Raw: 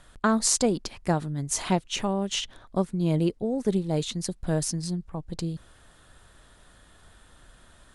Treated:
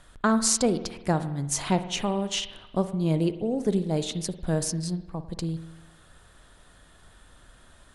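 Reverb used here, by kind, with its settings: spring tank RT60 1 s, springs 49 ms, chirp 30 ms, DRR 11 dB

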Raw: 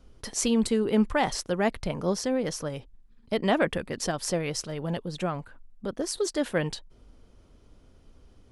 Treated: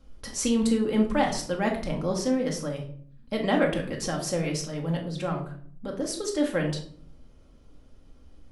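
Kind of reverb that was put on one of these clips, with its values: simulated room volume 690 m³, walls furnished, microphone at 2.2 m; trim -3 dB

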